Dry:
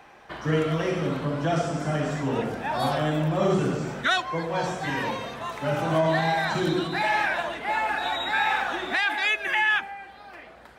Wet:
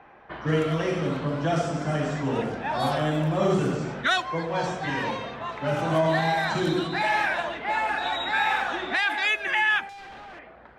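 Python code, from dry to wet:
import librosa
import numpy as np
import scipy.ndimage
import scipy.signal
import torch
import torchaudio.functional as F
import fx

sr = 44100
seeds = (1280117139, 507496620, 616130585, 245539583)

y = fx.clip_1bit(x, sr, at=(9.89, 10.39))
y = fx.env_lowpass(y, sr, base_hz=1900.0, full_db=-20.0)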